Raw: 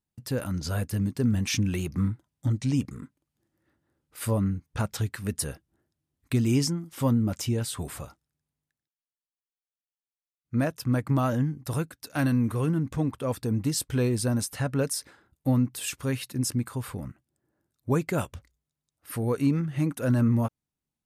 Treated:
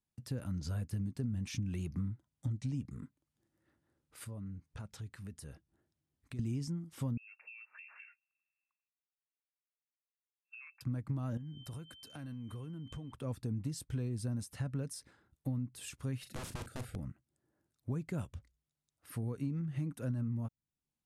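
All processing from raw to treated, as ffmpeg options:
-filter_complex "[0:a]asettb=1/sr,asplit=3[a][b][c];[a]atrim=end=4.244[d];[b]atrim=start=4.24:end=6.39,asetpts=PTS-STARTPTS,afade=t=in:d=0.004:c=qsin,afade=t=out:st=2.146:d=0.004:c=qsin,highshelf=f=10k:g=-4.5,acompressor=threshold=-40dB:ratio=3:attack=3.2:release=140:knee=1:detection=peak[e];[c]atrim=start=6.386[f];[d][e]acrossfade=d=0.004:c1=hsin:c2=qsin[g];[g][f]acrossfade=d=0.004:c1=qsin:c2=hsin,asettb=1/sr,asplit=3[h][i][j];[h]atrim=end=7.174[k];[i]atrim=start=7.17:end=10.81,asetpts=PTS-STARTPTS,afade=t=in:d=0.004:c=qsin,afade=t=out:st=3.636:d=0.004:c=qsin,lowpass=f=2.4k:t=q:w=0.5098,lowpass=f=2.4k:t=q:w=0.6013,lowpass=f=2.4k:t=q:w=0.9,lowpass=f=2.4k:t=q:w=2.563,afreqshift=-2800,acompressor=threshold=-38dB:ratio=6:attack=3.2:release=140:knee=1:detection=peak,highpass=1.3k[l];[j]atrim=start=10.806[m];[k][l]acrossfade=d=0.004:c1=hsin:c2=qsin[n];[n][m]acrossfade=d=0.004:c1=qsin:c2=hsin,asettb=1/sr,asplit=3[o][p][q];[o]atrim=end=11.374[r];[p]atrim=start=11.37:end=13.12,asetpts=PTS-STARTPTS,afade=t=in:d=0.004:c=qsin,afade=t=out:st=1.746:d=0.004:c=qsin,aeval=exprs='val(0)+0.00562*sin(2*PI*3100*n/s)':c=same,acompressor=threshold=-35dB:ratio=10:attack=3.2:release=140:knee=1:detection=peak[s];[q]atrim=start=13.116[t];[r][s]acrossfade=d=0.004:c1=hsin:c2=qsin[u];[u][t]acrossfade=d=0.004:c1=qsin:c2=hsin,asettb=1/sr,asplit=3[v][w][x];[v]atrim=end=16.204[y];[w]atrim=start=16.2:end=16.96,asetpts=PTS-STARTPTS,afade=t=in:d=0.004:c=qsin,afade=t=out:st=0.756:d=0.004:c=qsin,asuperstop=centerf=990:order=8:qfactor=1.9,aeval=exprs='(mod(20*val(0)+1,2)-1)/20':c=same,asplit=2[z][aa];[aa]adelay=39,volume=-10dB[ab];[z][ab]amix=inputs=2:normalize=0,atrim=end_sample=33516[ac];[x]atrim=start=16.956[ad];[y][ac]acrossfade=d=0.004:c1=hsin:c2=qsin[ae];[ae][ad]acrossfade=d=0.004:c1=qsin:c2=hsin,acrossover=split=240[af][ag];[ag]acompressor=threshold=-58dB:ratio=1.5[ah];[af][ah]amix=inputs=2:normalize=0,lowpass=f=12k:w=0.5412,lowpass=f=12k:w=1.3066,acompressor=threshold=-29dB:ratio=6,volume=-4dB"

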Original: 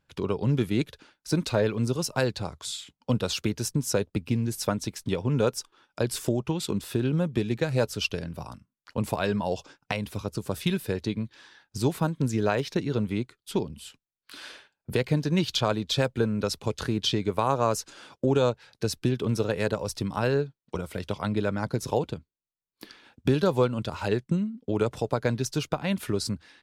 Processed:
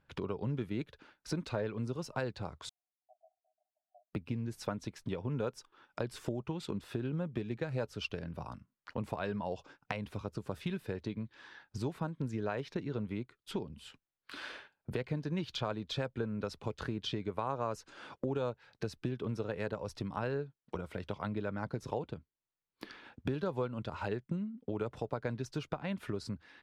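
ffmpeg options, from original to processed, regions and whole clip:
-filter_complex "[0:a]asettb=1/sr,asplit=3[a][b][c];[a]atrim=end=2.694[d];[b]atrim=start=2.69:end=4.13,asetpts=PTS-STARTPTS,afade=t=in:d=0.004:c=qsin,afade=t=out:st=1.436:d=0.004:c=qsin,asuperpass=centerf=690:order=8:qfactor=5.1,aderivative[e];[c]atrim=start=4.126[f];[d][e]acrossfade=d=0.004:c1=hsin:c2=qsin[g];[g][f]acrossfade=d=0.004:c1=qsin:c2=hsin,lowpass=f=2.1k:p=1,acompressor=threshold=-44dB:ratio=2,equalizer=f=1.6k:w=0.63:g=3,volume=1dB"

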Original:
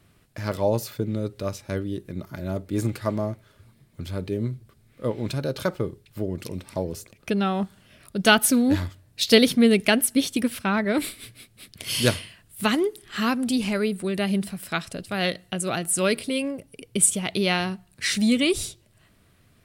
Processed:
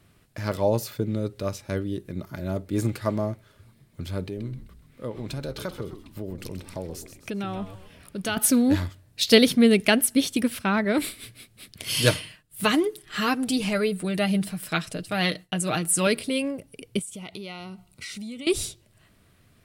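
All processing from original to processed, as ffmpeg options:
-filter_complex "[0:a]asettb=1/sr,asplit=3[a][b][c];[a]atrim=end=4.244[d];[b]atrim=start=4.24:end=8.37,asetpts=PTS-STARTPTS,afade=t=in:d=0.004:c=qsin,afade=t=out:st=4.126:d=0.004:c=qsin,acompressor=threshold=-33dB:ratio=2:attack=3.2:release=140:knee=1:detection=peak,asplit=6[e][f][g][h][i][j];[f]adelay=129,afreqshift=-93,volume=-10.5dB[k];[g]adelay=258,afreqshift=-186,volume=-17.2dB[l];[h]adelay=387,afreqshift=-279,volume=-24dB[m];[i]adelay=516,afreqshift=-372,volume=-30.7dB[n];[j]adelay=645,afreqshift=-465,volume=-37.5dB[o];[e][k][l][m][n][o]amix=inputs=6:normalize=0,atrim=end_sample=182133[p];[c]atrim=start=8.366[q];[d][p]acrossfade=d=0.004:c1=hsin:c2=qsin[r];[r][q]acrossfade=d=0.004:c1=qsin:c2=hsin,asettb=1/sr,asplit=3[s][t][u];[s]atrim=end=11.964[v];[t]atrim=start=11.96:end=16.07,asetpts=PTS-STARTPTS,afade=t=in:d=0.004:c=qsin,afade=t=out:st=4.106:d=0.004:c=qsin,agate=range=-33dB:threshold=-49dB:ratio=3:release=100:detection=peak,aecho=1:1:6.5:0.56,atrim=end_sample=181251[w];[u]atrim=start=16.066[x];[v][w]acrossfade=d=0.004:c1=hsin:c2=qsin[y];[y][x]acrossfade=d=0.004:c1=qsin:c2=hsin,asettb=1/sr,asplit=3[z][aa][ab];[z]atrim=end=16.994[ac];[aa]atrim=start=16.99:end=18.47,asetpts=PTS-STARTPTS,afade=t=in:d=0.004:c=qsin,afade=t=out:st=1.476:d=0.004:c=qsin,asuperstop=centerf=1700:order=12:qfactor=5.5,acompressor=threshold=-35dB:ratio=6:attack=3.2:release=140:knee=1:detection=peak[ad];[ab]atrim=start=18.466[ae];[ac][ad]acrossfade=d=0.004:c1=hsin:c2=qsin[af];[af][ae]acrossfade=d=0.004:c1=qsin:c2=hsin"

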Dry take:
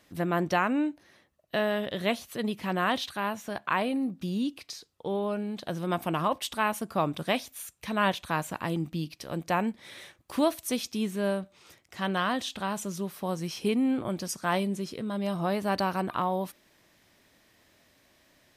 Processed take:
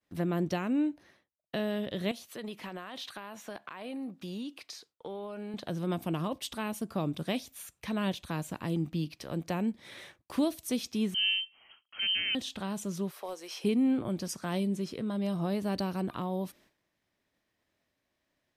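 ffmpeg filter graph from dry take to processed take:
-filter_complex "[0:a]asettb=1/sr,asplit=3[a][b][c];[a]atrim=end=2.114[d];[b]atrim=start=2.11:end=5.54,asetpts=PTS-STARTPTS,afade=t=in:d=0.004:c=qsin,afade=t=out:st=3.426:d=0.004:c=qsin,highpass=f=450:p=1,acompressor=threshold=-34dB:ratio=6:attack=3.2:release=140:knee=1:detection=peak[e];[c]atrim=start=5.536[f];[d][e]acrossfade=d=0.004:c1=hsin:c2=qsin[g];[g][f]acrossfade=d=0.004:c1=qsin:c2=hsin,asettb=1/sr,asplit=3[h][i][j];[h]atrim=end=11.144[k];[i]atrim=start=11.14:end=12.35,asetpts=PTS-STARTPTS,afade=t=in:d=0.004:c=qsin,afade=t=out:st=1.206:d=0.004:c=qsin,tiltshelf=f=1.2k:g=7,lowpass=f=2.8k:t=q:w=0.5098,lowpass=f=2.8k:t=q:w=0.6013,lowpass=f=2.8k:t=q:w=0.9,lowpass=f=2.8k:t=q:w=2.563,afreqshift=-3300[l];[j]atrim=start=12.346[m];[k][l]acrossfade=d=0.004:c1=hsin:c2=qsin[n];[n][m]acrossfade=d=0.004:c1=qsin:c2=hsin,asettb=1/sr,asplit=3[o][p][q];[o]atrim=end=13.114[r];[p]atrim=start=13.11:end=13.64,asetpts=PTS-STARTPTS,afade=t=in:d=0.004:c=qsin,afade=t=out:st=0.526:d=0.004:c=qsin,highpass=f=430:w=0.5412,highpass=f=430:w=1.3066,aeval=exprs='clip(val(0),-1,0.0398)':c=same[s];[q]atrim=start=13.636[t];[r][s]acrossfade=d=0.004:c1=hsin:c2=qsin[u];[u][t]acrossfade=d=0.004:c1=qsin:c2=hsin,agate=range=-33dB:threshold=-52dB:ratio=3:detection=peak,highshelf=f=4.3k:g=-5.5,acrossover=split=460|3000[v][w][x];[w]acompressor=threshold=-43dB:ratio=3[y];[v][y][x]amix=inputs=3:normalize=0"

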